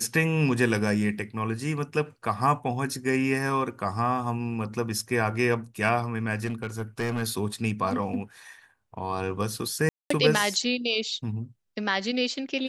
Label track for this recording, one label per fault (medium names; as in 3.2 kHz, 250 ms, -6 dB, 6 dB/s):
6.460000	7.230000	clipped -24 dBFS
9.890000	10.100000	dropout 214 ms